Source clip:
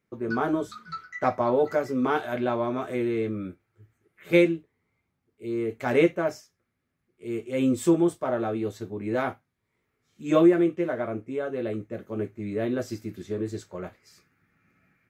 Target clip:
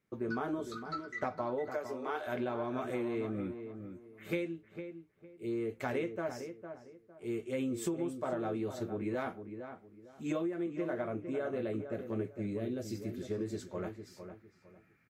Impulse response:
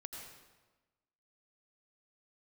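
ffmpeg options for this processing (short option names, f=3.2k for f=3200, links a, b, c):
-filter_complex "[0:a]acompressor=threshold=-28dB:ratio=16,asettb=1/sr,asplit=3[a][b][c];[a]atrim=end=1.704[d];[b]atrim=start=1.7:end=2.27,asetpts=PTS-STARTPTS,afade=t=in:d=0.004:c=qsin,afade=t=out:st=0.566:d=0.004:c=qsin,highpass=f=350:w=0.5412,highpass=f=350:w=1.3066[e];[c]atrim=start=2.266[f];[d][e]acrossfade=d=0.004:c1=hsin:c2=qsin[g];[g][f]acrossfade=d=0.004:c1=qsin:c2=hsin,asettb=1/sr,asplit=3[h][i][j];[h]atrim=end=12.464[k];[i]atrim=start=12.46:end=12.95,asetpts=PTS-STARTPTS,afade=t=in:d=0.004:c=qsin,afade=t=out:st=0.486:d=0.004:c=qsin,equalizer=f=1.2k:w=0.91:g=-11.5[l];[j]atrim=start=12.946[m];[k][l]acrossfade=d=0.004:c1=hsin:c2=qsin[n];[n][m]acrossfade=d=0.004:c1=qsin:c2=hsin,asplit=2[o][p];[p]adelay=456,lowpass=f=1.7k:p=1,volume=-8.5dB,asplit=2[q][r];[r]adelay=456,lowpass=f=1.7k:p=1,volume=0.28,asplit=2[s][t];[t]adelay=456,lowpass=f=1.7k:p=1,volume=0.28[u];[q][s][u]amix=inputs=3:normalize=0[v];[o][v]amix=inputs=2:normalize=0,volume=-3dB" -ar 44100 -c:a libmp3lame -b:a 64k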